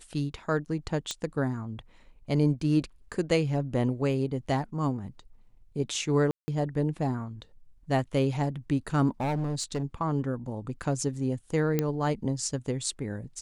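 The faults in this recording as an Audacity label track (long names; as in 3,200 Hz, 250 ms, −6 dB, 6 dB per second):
1.110000	1.110000	click −17 dBFS
6.310000	6.480000	drop-out 170 ms
9.200000	9.830000	clipping −25.5 dBFS
11.790000	11.790000	click −12 dBFS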